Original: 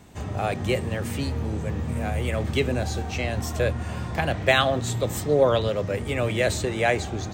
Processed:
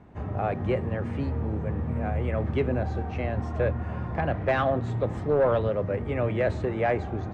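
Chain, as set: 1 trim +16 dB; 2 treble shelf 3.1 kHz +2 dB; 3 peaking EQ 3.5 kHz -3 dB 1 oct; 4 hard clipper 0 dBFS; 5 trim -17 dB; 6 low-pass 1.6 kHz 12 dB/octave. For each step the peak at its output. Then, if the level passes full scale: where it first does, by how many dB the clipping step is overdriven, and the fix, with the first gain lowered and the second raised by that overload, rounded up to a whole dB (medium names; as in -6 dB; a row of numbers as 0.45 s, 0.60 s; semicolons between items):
+10.5 dBFS, +11.0 dBFS, +9.5 dBFS, 0.0 dBFS, -17.0 dBFS, -16.5 dBFS; step 1, 9.5 dB; step 1 +6 dB, step 5 -7 dB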